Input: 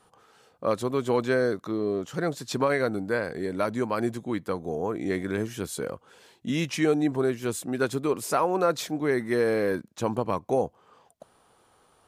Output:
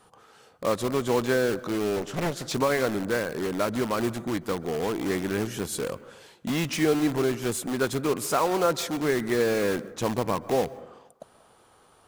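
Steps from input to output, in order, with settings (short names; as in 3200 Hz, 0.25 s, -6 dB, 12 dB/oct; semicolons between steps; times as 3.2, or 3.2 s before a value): in parallel at -6 dB: wrapped overs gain 27 dB; on the sum: reverb RT60 0.90 s, pre-delay 0.122 s, DRR 17.5 dB; 1.96–2.54 Doppler distortion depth 0.77 ms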